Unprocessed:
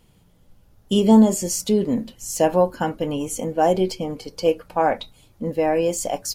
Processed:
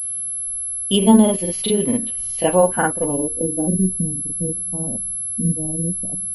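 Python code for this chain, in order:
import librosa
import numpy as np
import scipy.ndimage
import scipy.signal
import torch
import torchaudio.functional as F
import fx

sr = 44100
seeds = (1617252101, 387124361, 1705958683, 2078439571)

y = fx.granulator(x, sr, seeds[0], grain_ms=100.0, per_s=20.0, spray_ms=39.0, spread_st=0)
y = fx.filter_sweep_lowpass(y, sr, from_hz=3200.0, to_hz=180.0, start_s=2.59, end_s=3.77, q=2.4)
y = fx.pwm(y, sr, carrier_hz=11000.0)
y = F.gain(torch.from_numpy(y), 2.5).numpy()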